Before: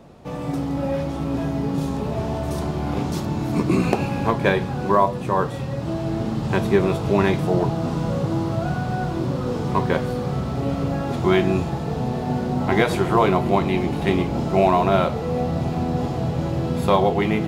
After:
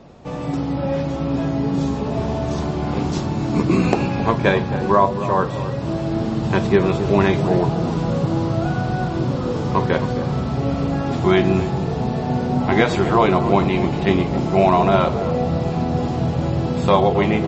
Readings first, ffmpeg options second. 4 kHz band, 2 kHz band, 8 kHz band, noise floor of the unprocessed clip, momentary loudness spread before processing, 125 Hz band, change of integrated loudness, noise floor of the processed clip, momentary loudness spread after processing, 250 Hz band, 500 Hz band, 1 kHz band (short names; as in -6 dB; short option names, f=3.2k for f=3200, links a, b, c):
+2.5 dB, +2.5 dB, n/a, -28 dBFS, 7 LU, +2.5 dB, +2.5 dB, -25 dBFS, 7 LU, +2.5 dB, +2.5 dB, +2.5 dB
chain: -filter_complex "[0:a]asplit=2[a][b];[b]adelay=268,lowpass=f=1k:p=1,volume=-9.5dB,asplit=2[c][d];[d]adelay=268,lowpass=f=1k:p=1,volume=0.38,asplit=2[e][f];[f]adelay=268,lowpass=f=1k:p=1,volume=0.38,asplit=2[g][h];[h]adelay=268,lowpass=f=1k:p=1,volume=0.38[i];[a][c][e][g][i]amix=inputs=5:normalize=0,volume=2.5dB" -ar 32000 -c:a libmp3lame -b:a 32k